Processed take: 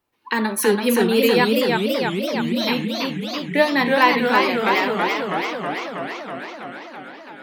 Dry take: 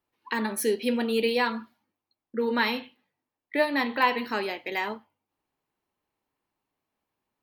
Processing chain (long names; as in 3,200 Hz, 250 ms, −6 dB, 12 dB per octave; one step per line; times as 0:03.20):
gain on a spectral selection 0:01.45–0:02.68, 360–3,000 Hz −23 dB
feedback echo with a swinging delay time 327 ms, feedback 74%, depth 176 cents, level −3.5 dB
level +7 dB